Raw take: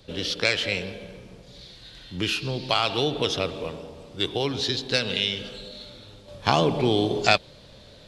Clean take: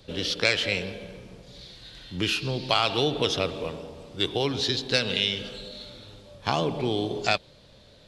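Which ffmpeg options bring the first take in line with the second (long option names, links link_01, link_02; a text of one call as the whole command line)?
ffmpeg -i in.wav -af "asetnsamples=nb_out_samples=441:pad=0,asendcmd='6.28 volume volume -5dB',volume=0dB" out.wav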